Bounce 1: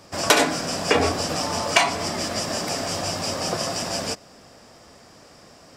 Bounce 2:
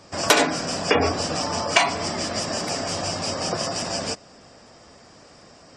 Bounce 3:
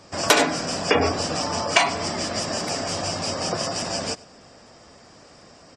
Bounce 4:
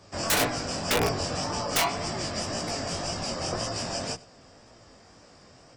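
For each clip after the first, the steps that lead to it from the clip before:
spectral gate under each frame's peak -25 dB strong
delay 100 ms -23 dB
octave divider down 1 oct, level -2 dB; integer overflow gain 10.5 dB; chorus 1.9 Hz, delay 17 ms, depth 6.4 ms; trim -2 dB

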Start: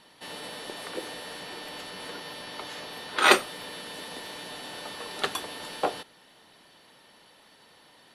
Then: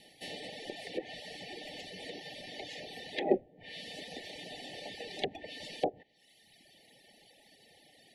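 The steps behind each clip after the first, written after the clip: Chebyshev band-stop 830–1800 Hz, order 5; low-pass that closes with the level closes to 500 Hz, closed at -26 dBFS; reverb removal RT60 1.3 s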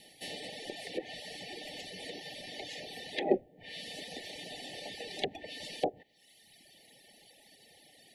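treble shelf 6.4 kHz +7.5 dB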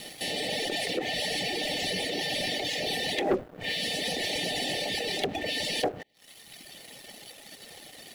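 in parallel at +2 dB: compressor with a negative ratio -46 dBFS, ratio -0.5; on the sum: waveshaping leveller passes 3; trim -5 dB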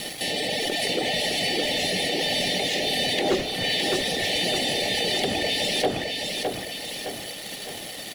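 in parallel at -2.5 dB: compressor with a negative ratio -37 dBFS, ratio -1; on the sum: feedback delay 612 ms, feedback 50%, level -4 dB; trim +1.5 dB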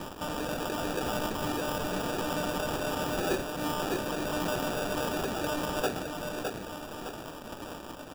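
sample-rate reducer 2.1 kHz, jitter 0%; trim -6.5 dB

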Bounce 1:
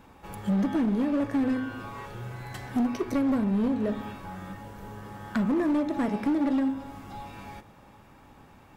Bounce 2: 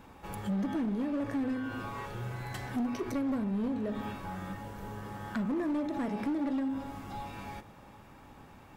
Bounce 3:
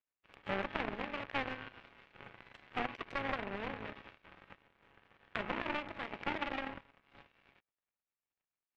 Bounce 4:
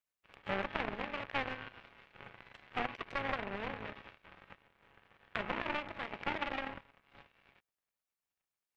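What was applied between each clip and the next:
peak limiter -28 dBFS, peak gain reduction 6.5 dB
spectral peaks clipped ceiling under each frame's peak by 16 dB; power-law waveshaper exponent 3; resonant low-pass 2.6 kHz, resonance Q 1.8; trim +5 dB
peaking EQ 290 Hz -3 dB 0.77 oct; trim +1 dB

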